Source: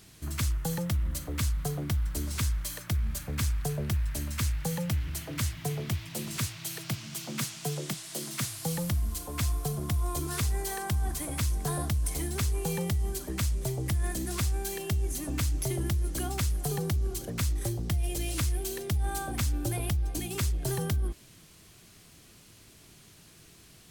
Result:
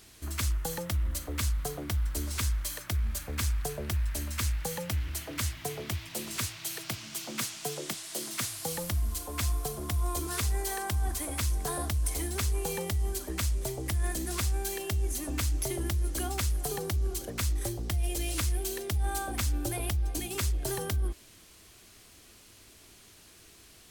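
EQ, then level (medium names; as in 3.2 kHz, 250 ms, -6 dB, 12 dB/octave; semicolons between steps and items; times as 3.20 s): peaking EQ 150 Hz -12.5 dB 0.82 oct; +1.0 dB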